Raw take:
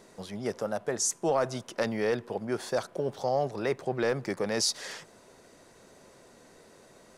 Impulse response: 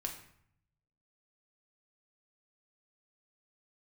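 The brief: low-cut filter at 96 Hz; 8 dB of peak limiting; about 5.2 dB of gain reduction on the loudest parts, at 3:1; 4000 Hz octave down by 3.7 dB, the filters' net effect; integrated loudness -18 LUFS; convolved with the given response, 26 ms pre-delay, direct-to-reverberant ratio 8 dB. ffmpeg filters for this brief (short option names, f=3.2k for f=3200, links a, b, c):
-filter_complex "[0:a]highpass=96,equalizer=f=4k:t=o:g=-5,acompressor=threshold=-30dB:ratio=3,alimiter=level_in=1dB:limit=-24dB:level=0:latency=1,volume=-1dB,asplit=2[a][b];[1:a]atrim=start_sample=2205,adelay=26[c];[b][c]afir=irnorm=-1:irlink=0,volume=-8dB[d];[a][d]amix=inputs=2:normalize=0,volume=18dB"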